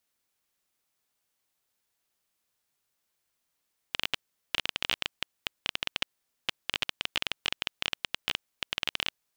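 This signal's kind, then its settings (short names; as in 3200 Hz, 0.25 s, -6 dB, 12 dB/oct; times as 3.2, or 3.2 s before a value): random clicks 14/s -9.5 dBFS 5.26 s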